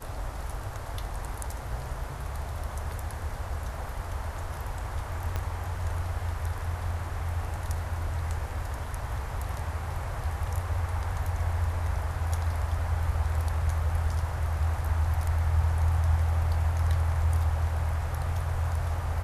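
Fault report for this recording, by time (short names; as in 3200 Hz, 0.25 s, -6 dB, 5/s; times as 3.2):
5.36 pop -17 dBFS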